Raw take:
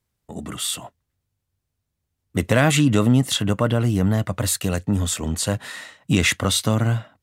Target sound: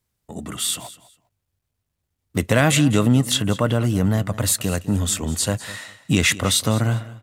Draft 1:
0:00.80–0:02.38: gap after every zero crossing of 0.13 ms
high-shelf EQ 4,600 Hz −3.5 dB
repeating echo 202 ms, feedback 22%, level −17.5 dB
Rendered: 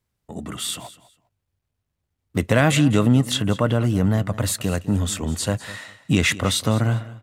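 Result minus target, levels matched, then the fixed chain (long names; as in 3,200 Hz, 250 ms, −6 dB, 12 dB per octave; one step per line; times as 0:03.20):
8,000 Hz band −4.5 dB
0:00.80–0:02.38: gap after every zero crossing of 0.13 ms
high-shelf EQ 4,600 Hz +3.5 dB
repeating echo 202 ms, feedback 22%, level −17.5 dB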